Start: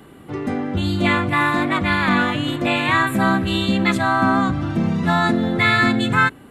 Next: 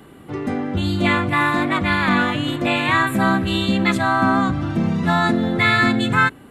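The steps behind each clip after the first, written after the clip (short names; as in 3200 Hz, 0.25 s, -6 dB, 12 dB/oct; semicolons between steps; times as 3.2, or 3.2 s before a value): nothing audible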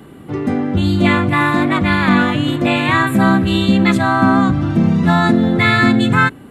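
bell 170 Hz +5 dB 2.7 oct; gain +2 dB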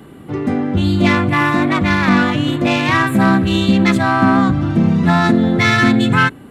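self-modulated delay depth 0.068 ms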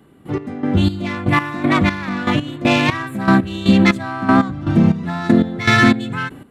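step gate "..x..xx." 119 bpm -12 dB; gain +1 dB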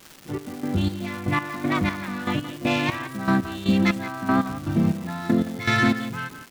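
crackle 580/s -25 dBFS; speakerphone echo 0.17 s, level -11 dB; gain -8 dB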